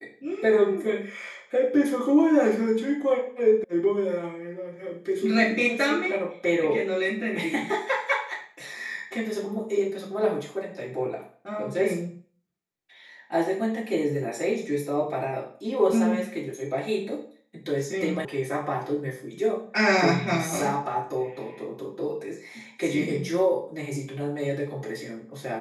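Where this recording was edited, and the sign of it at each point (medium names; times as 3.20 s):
3.64 s: sound stops dead
18.25 s: sound stops dead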